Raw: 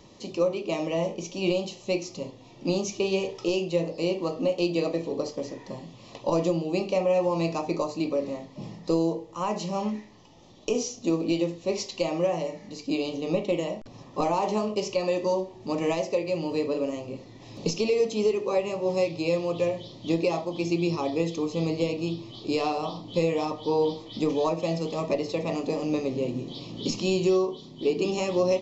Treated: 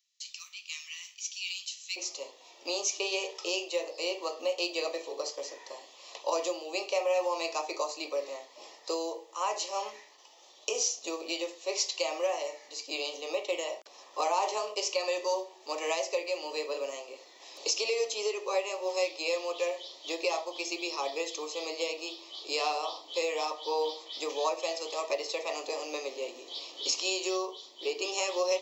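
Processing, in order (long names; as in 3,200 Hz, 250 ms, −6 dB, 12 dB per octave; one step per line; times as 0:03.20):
Bessel high-pass filter 2,700 Hz, order 8, from 0:01.96 700 Hz
noise gate with hold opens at −49 dBFS
high-shelf EQ 5,600 Hz +10 dB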